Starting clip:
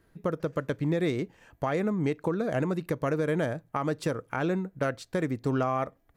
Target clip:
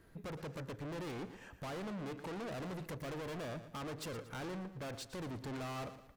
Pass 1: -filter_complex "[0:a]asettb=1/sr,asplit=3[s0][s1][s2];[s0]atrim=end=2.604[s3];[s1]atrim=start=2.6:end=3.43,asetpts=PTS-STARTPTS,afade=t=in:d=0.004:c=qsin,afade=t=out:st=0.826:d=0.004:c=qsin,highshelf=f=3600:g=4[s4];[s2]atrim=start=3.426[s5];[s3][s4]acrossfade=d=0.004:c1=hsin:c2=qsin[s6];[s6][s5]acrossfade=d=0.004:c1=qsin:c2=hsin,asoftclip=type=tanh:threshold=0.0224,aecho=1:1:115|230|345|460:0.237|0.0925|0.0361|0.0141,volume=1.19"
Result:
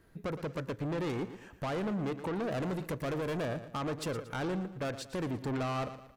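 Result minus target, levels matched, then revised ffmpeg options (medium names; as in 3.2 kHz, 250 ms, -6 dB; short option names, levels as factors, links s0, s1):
saturation: distortion -4 dB
-filter_complex "[0:a]asettb=1/sr,asplit=3[s0][s1][s2];[s0]atrim=end=2.604[s3];[s1]atrim=start=2.6:end=3.43,asetpts=PTS-STARTPTS,afade=t=in:d=0.004:c=qsin,afade=t=out:st=0.826:d=0.004:c=qsin,highshelf=f=3600:g=4[s4];[s2]atrim=start=3.426[s5];[s3][s4]acrossfade=d=0.004:c1=hsin:c2=qsin[s6];[s6][s5]acrossfade=d=0.004:c1=qsin:c2=hsin,asoftclip=type=tanh:threshold=0.00708,aecho=1:1:115|230|345|460:0.237|0.0925|0.0361|0.0141,volume=1.19"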